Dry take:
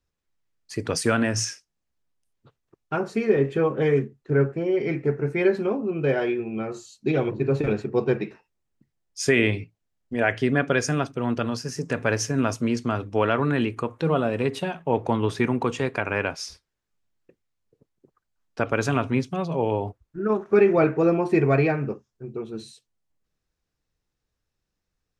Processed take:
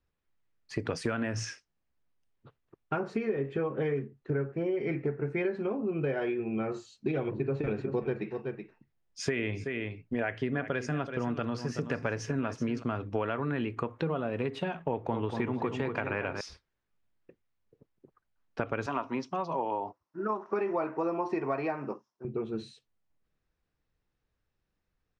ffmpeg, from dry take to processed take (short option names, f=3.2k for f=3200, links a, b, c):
-filter_complex "[0:a]asplit=3[a][b][c];[a]afade=t=out:st=7.7:d=0.02[d];[b]aecho=1:1:377:0.211,afade=t=in:st=7.7:d=0.02,afade=t=out:st=12.82:d=0.02[e];[c]afade=t=in:st=12.82:d=0.02[f];[d][e][f]amix=inputs=3:normalize=0,asettb=1/sr,asplit=3[g][h][i];[g]atrim=end=14.894[j];[h]atrim=start=14.89:end=16.41,asetpts=PTS-STARTPTS,afade=t=in:d=0.004:c=qsin,afade=t=out:st=1.516:d=0.004:c=qsin,asplit=2[k][l];[l]adelay=235,lowpass=f=2k:p=1,volume=-7dB,asplit=2[m][n];[n]adelay=235,lowpass=f=2k:p=1,volume=0.46,asplit=2[o][p];[p]adelay=235,lowpass=f=2k:p=1,volume=0.46,asplit=2[q][r];[r]adelay=235,lowpass=f=2k:p=1,volume=0.46,asplit=2[s][t];[t]adelay=235,lowpass=f=2k:p=1,volume=0.46[u];[k][m][o][q][s][u]amix=inputs=6:normalize=0,atrim=end_sample=67032[v];[i]atrim=start=16.406[w];[j][v]acrossfade=d=0.004:c1=hsin:c2=qsin[x];[x][w]acrossfade=d=0.004:c1=qsin:c2=hsin,asettb=1/sr,asplit=3[y][z][aa];[y]atrim=end=18.864[ab];[z]atrim=start=18.86:end=22.25,asetpts=PTS-STARTPTS,afade=t=in:d=0.004:c=qsin,afade=t=out:st=3.386:d=0.004:c=qsin,highpass=320,equalizer=f=440:t=q:w=4:g=-7,equalizer=f=990:t=q:w=4:g=9,equalizer=f=1.6k:t=q:w=4:g=-5,equalizer=f=2.3k:t=q:w=4:g=-6,equalizer=f=3.4k:t=q:w=4:g=-5,equalizer=f=5.5k:t=q:w=4:g=9,lowpass=f=8.3k:w=0.5412,lowpass=f=8.3k:w=1.3066[ac];[aa]atrim=start=22.246[ad];[ab][ac]acrossfade=d=0.004:c1=hsin:c2=qsin[ae];[ae][ad]acrossfade=d=0.004:c1=qsin:c2=hsin,lowpass=2.5k,aemphasis=mode=production:type=50kf,acompressor=threshold=-28dB:ratio=6"